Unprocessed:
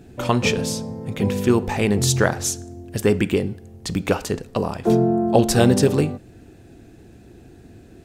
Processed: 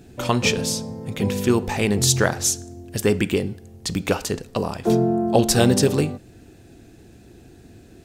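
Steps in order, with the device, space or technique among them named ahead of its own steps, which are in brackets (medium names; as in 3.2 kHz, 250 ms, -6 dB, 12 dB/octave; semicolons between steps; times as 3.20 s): presence and air boost (peaking EQ 4.9 kHz +4 dB 1.9 oct; treble shelf 10 kHz +6 dB); trim -1.5 dB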